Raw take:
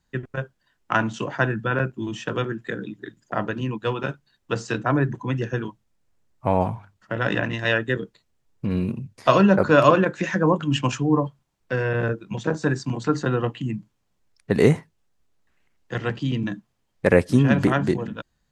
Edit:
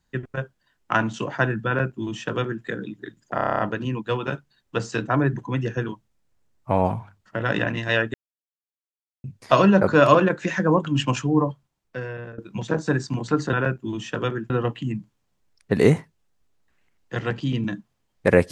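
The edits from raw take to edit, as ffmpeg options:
-filter_complex "[0:a]asplit=14[a][b][c][d][e][f][g][h][i][j][k][l][m][n];[a]atrim=end=3.382[o];[b]atrim=start=3.348:end=3.382[p];[c]atrim=start=3.348:end=3.382[q];[d]atrim=start=3.348:end=3.382[r];[e]atrim=start=3.348:end=3.382[s];[f]atrim=start=3.348:end=3.382[t];[g]atrim=start=3.348:end=3.382[u];[h]atrim=start=3.348:end=3.382[v];[i]atrim=start=3.348:end=7.9,asetpts=PTS-STARTPTS,afade=t=out:st=4.548:d=0.004:c=hsin[w];[j]atrim=start=7.9:end=9,asetpts=PTS-STARTPTS,volume=0[x];[k]atrim=start=9:end=12.14,asetpts=PTS-STARTPTS,afade=t=in:d=0.004:c=hsin,afade=t=out:st=2.15:d=0.99:silence=0.1[y];[l]atrim=start=12.14:end=13.292,asetpts=PTS-STARTPTS,afade=t=in:d=0.004:c=hsin:silence=0.1[z];[m]atrim=start=1.668:end=2.642[aa];[n]atrim=start=13.288[ab];[o][p]acrossfade=d=0.004:c1=hsin:c2=hsin[ac];[ac][q]acrossfade=d=0.004:c1=hsin:c2=hsin[ad];[ad][r]acrossfade=d=0.004:c1=hsin:c2=hsin[ae];[ae][s]acrossfade=d=0.004:c1=hsin:c2=hsin[af];[af][t]acrossfade=d=0.004:c1=hsin:c2=hsin[ag];[ag][u]acrossfade=d=0.004:c1=hsin:c2=hsin[ah];[ah][v]acrossfade=d=0.004:c1=hsin:c2=hsin[ai];[w][x][y][z]concat=n=4:v=0:a=1[aj];[ai][aj]acrossfade=d=0.004:c1=hsin:c2=hsin[ak];[ak][aa]acrossfade=d=0.004:c1=hsin:c2=hsin[al];[al][ab]acrossfade=d=0.004:c1=hsin:c2=hsin"

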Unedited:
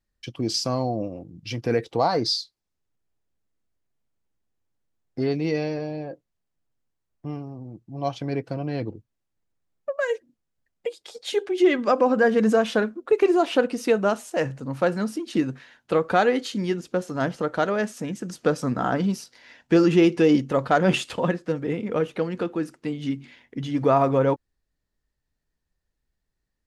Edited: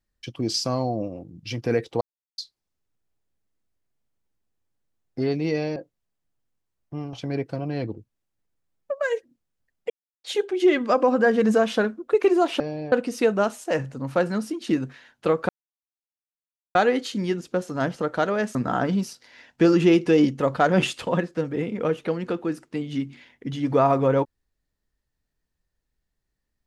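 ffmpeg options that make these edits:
-filter_complex "[0:a]asplit=11[a][b][c][d][e][f][g][h][i][j][k];[a]atrim=end=2.01,asetpts=PTS-STARTPTS,afade=t=out:st=2.006:d=0.004:c=hsin[l];[b]atrim=start=2.01:end=2.38,asetpts=PTS-STARTPTS,volume=0[m];[c]atrim=start=2.38:end=5.762,asetpts=PTS-STARTPTS,afade=t=in:d=0.004:c=hsin[n];[d]atrim=start=6.078:end=7.452[o];[e]atrim=start=8.108:end=10.88,asetpts=PTS-STARTPTS,afade=t=out:st=2.768:d=0.004:c=hsin[p];[f]atrim=start=10.88:end=11.22,asetpts=PTS-STARTPTS,volume=0[q];[g]atrim=start=11.22:end=13.582,asetpts=PTS-STARTPTS,afade=t=in:d=0.004:c=hsin[r];[h]atrim=start=5.758:end=6.082[s];[i]atrim=start=13.578:end=16.15,asetpts=PTS-STARTPTS,afade=t=out:st=2.568:d=0.004:c=hsin,apad=pad_dur=1.26[t];[j]atrim=start=16.15:end=17.952,asetpts=PTS-STARTPTS,afade=t=in:d=0.004:c=hsin[u];[k]atrim=start=18.658[v];[l][m][n]concat=n=3:v=0:a=1[w];[w][o]acrossfade=d=0.004:c1=hsin:c2=hsin[x];[p][q][r]concat=n=3:v=0:a=1[y];[x][y]acrossfade=d=0.004:c1=hsin:c2=hsin[z];[z][s]acrossfade=d=0.004:c1=hsin:c2=hsin[aa];[t][u]concat=n=2:v=0:a=1[ab];[aa][ab]acrossfade=d=0.004:c1=hsin:c2=hsin[ac];[ac][v]acrossfade=d=0.004:c1=hsin:c2=hsin"

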